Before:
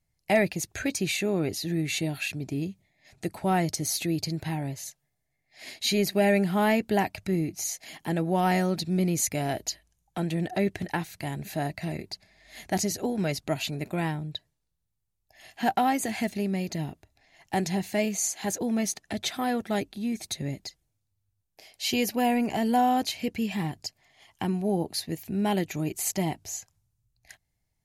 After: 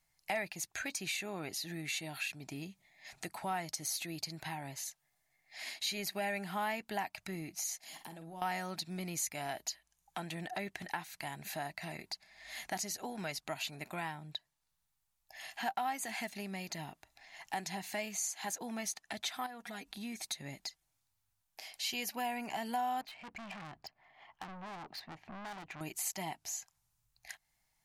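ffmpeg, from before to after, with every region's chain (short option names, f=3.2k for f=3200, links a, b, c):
-filter_complex "[0:a]asettb=1/sr,asplit=3[a][b][c];[a]atrim=end=7.814[d];[b]atrim=start=7.81:end=8.42,asetpts=PTS-STARTPTS,afade=t=in:d=0.004:c=qsin,afade=t=out:st=0.606:d=0.004:c=qsin,equalizer=f=1.7k:t=o:w=2.2:g=-9.5,acompressor=threshold=-43dB:ratio=4:attack=3.2:release=140:knee=1:detection=peak,asplit=2[e][f];[f]adelay=49,volume=-10dB[g];[e][g]amix=inputs=2:normalize=0,atrim=end_sample=26901[h];[c]atrim=start=8.416[i];[d][h]acrossfade=d=0.004:c1=hsin:c2=qsin[j];[j][i]acrossfade=d=0.004:c1=qsin:c2=hsin,asettb=1/sr,asplit=3[k][l][m];[k]atrim=end=19.464[n];[l]atrim=start=19.46:end=19.92,asetpts=PTS-STARTPTS,afade=t=in:d=0.004:c=qsin,afade=t=out:st=0.456:d=0.004:c=qsin,aecho=1:1:4.2:0.85,atrim=end_sample=20286,acompressor=threshold=-36dB:ratio=4:attack=3.2:release=140:knee=1:detection=peak[o];[m]atrim=start=19.916[p];[n][o]acrossfade=d=0.004:c1=hsin:c2=qsin[q];[q][p]acrossfade=d=0.004:c1=qsin:c2=hsin,asettb=1/sr,asplit=3[r][s][t];[r]atrim=end=23.014[u];[s]atrim=start=23.01:end=25.81,asetpts=PTS-STARTPTS,afade=t=in:d=0.004:c=qsin,afade=t=out:st=2.796:d=0.004:c=qsin,highshelf=f=6.8k:g=-9,adynamicsmooth=sensitivity=3:basefreq=1.8k,aeval=exprs='(tanh(89.1*val(0)+0.2)-tanh(0.2))/89.1':c=same[v];[t]atrim=start=25.806[w];[u][v]acrossfade=d=0.004:c1=hsin:c2=qsin[x];[x][w]acrossfade=d=0.004:c1=qsin:c2=hsin,lowshelf=f=640:t=q:w=1.5:g=-9,acompressor=threshold=-52dB:ratio=2,equalizer=f=84:w=1.9:g=-12,volume=5.5dB"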